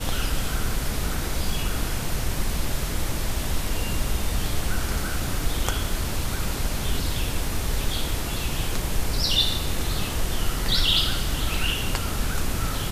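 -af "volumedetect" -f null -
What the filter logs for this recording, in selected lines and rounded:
mean_volume: -23.4 dB
max_volume: -5.6 dB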